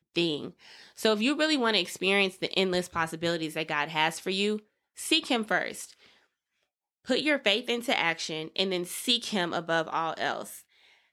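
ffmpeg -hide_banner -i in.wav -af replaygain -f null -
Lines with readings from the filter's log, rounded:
track_gain = +6.4 dB
track_peak = 0.231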